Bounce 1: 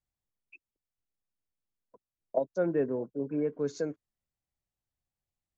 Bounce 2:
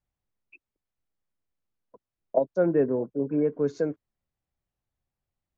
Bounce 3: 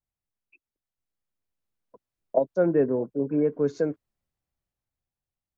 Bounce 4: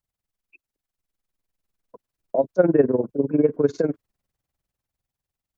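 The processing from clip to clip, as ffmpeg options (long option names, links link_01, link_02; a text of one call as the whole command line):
ffmpeg -i in.wav -af "lowpass=frequency=1700:poles=1,volume=6dB" out.wav
ffmpeg -i in.wav -af "dynaudnorm=framelen=210:gausssize=13:maxgain=11.5dB,volume=-7dB" out.wav
ffmpeg -i in.wav -af "tremolo=f=20:d=0.824,volume=8dB" out.wav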